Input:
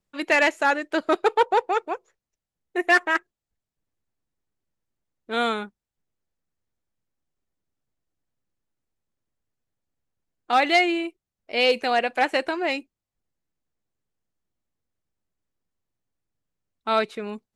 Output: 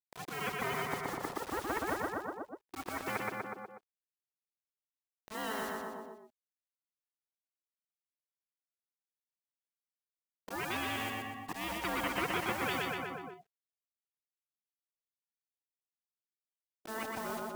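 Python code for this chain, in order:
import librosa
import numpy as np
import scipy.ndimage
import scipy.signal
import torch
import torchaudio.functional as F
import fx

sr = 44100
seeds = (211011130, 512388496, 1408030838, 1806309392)

p1 = fx.spec_quant(x, sr, step_db=30)
p2 = fx.level_steps(p1, sr, step_db=13)
p3 = p1 + (p2 * 10.0 ** (3.0 / 20.0))
p4 = fx.auto_swell(p3, sr, attack_ms=562.0)
p5 = p4 * np.sin(2.0 * np.pi * 440.0 * np.arange(len(p4)) / sr)
p6 = fx.ladder_bandpass(p5, sr, hz=390.0, resonance_pct=55)
p7 = fx.vibrato(p6, sr, rate_hz=5.6, depth_cents=25.0)
p8 = fx.quant_dither(p7, sr, seeds[0], bits=12, dither='none')
p9 = fx.echo_feedback(p8, sr, ms=122, feedback_pct=44, wet_db=-4.5)
p10 = fx.spectral_comp(p9, sr, ratio=4.0)
y = p10 * 10.0 ** (1.5 / 20.0)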